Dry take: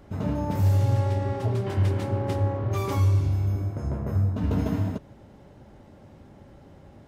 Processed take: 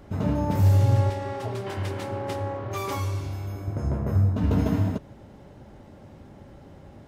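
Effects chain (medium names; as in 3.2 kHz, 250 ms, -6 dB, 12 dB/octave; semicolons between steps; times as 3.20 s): 1.10–3.68 s: bass shelf 310 Hz -12 dB; trim +2.5 dB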